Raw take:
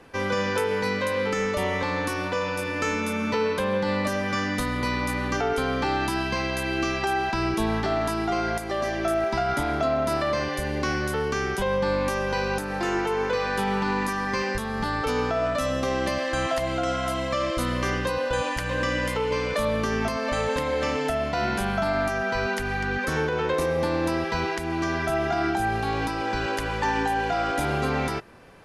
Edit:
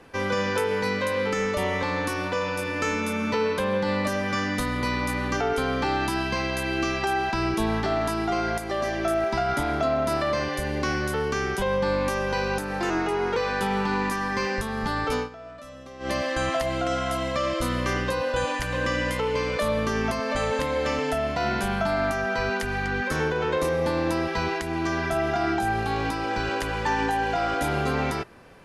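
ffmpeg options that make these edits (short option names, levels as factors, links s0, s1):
-filter_complex "[0:a]asplit=5[s0][s1][s2][s3][s4];[s0]atrim=end=12.904[s5];[s1]atrim=start=12.9:end=13.33,asetpts=PTS-STARTPTS,asetrate=41013,aresample=44100,atrim=end_sample=20390,asetpts=PTS-STARTPTS[s6];[s2]atrim=start=13.326:end=15.26,asetpts=PTS-STARTPTS,afade=t=out:st=1.804:d=0.13:silence=0.141254[s7];[s3]atrim=start=15.26:end=15.96,asetpts=PTS-STARTPTS,volume=0.141[s8];[s4]atrim=start=15.96,asetpts=PTS-STARTPTS,afade=t=in:d=0.13:silence=0.141254[s9];[s5][s6]acrossfade=d=0.004:c1=hsin:c2=hsin[s10];[s7][s8][s9]concat=n=3:v=0:a=1[s11];[s10][s11]acrossfade=d=0.004:c1=hsin:c2=hsin"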